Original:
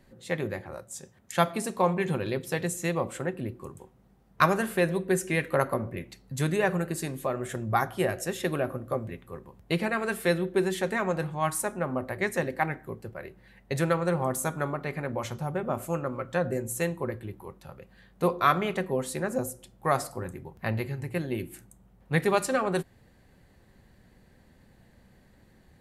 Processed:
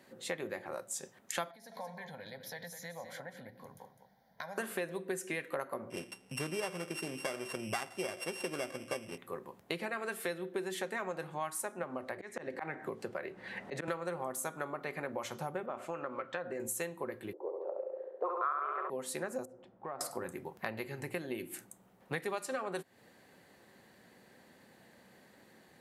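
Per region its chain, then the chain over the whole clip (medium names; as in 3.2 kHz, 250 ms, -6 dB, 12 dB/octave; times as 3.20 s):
1.51–4.58 s: compression, threshold -39 dBFS + static phaser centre 1.8 kHz, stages 8 + delay 205 ms -10.5 dB
5.90–9.18 s: sorted samples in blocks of 16 samples + low-pass 12 kHz 24 dB/octave + peaking EQ 3.8 kHz -3.5 dB 1.4 oct
11.83–13.88 s: low-pass 8.1 kHz + slow attack 515 ms + three bands compressed up and down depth 100%
15.66–16.60 s: low-pass 2.8 kHz + compression 2.5:1, threshold -29 dBFS + tilt EQ +2 dB/octave
17.33–18.90 s: steep high-pass 340 Hz + flutter echo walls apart 11.8 m, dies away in 1.2 s + touch-sensitive low-pass 510–1300 Hz up, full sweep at -22 dBFS
19.45–20.01 s: low-pass 1.3 kHz + compression 4:1, threshold -42 dBFS
whole clip: Bessel high-pass 330 Hz, order 2; compression 5:1, threshold -39 dBFS; trim +3.5 dB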